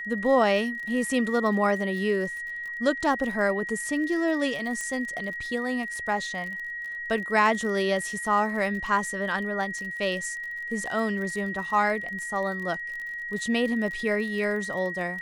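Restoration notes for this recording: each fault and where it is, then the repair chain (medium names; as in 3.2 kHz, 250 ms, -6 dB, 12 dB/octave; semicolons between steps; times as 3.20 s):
crackle 36 per s -34 dBFS
whine 1.9 kHz -32 dBFS
4.81 s: pop -19 dBFS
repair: de-click; band-stop 1.9 kHz, Q 30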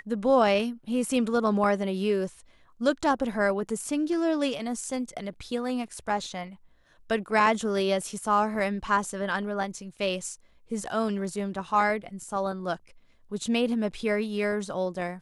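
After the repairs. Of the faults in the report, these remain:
nothing left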